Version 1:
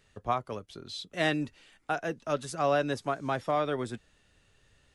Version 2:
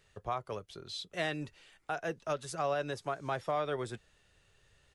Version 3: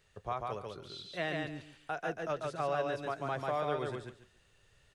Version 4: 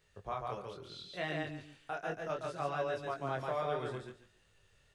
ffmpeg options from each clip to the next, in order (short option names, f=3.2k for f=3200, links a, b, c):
-af "alimiter=limit=-21.5dB:level=0:latency=1:release=207,firequalizer=gain_entry='entry(160,0);entry(250,-8);entry(370,1)':delay=0.05:min_phase=1,volume=-2.5dB"
-filter_complex "[0:a]acrossover=split=3900[a][b];[b]acompressor=threshold=-57dB:ratio=4:attack=1:release=60[c];[a][c]amix=inputs=2:normalize=0,aecho=1:1:142|284|426:0.708|0.149|0.0312,volume=-1.5dB"
-af "flanger=delay=19:depth=6.5:speed=0.68,volume=1dB"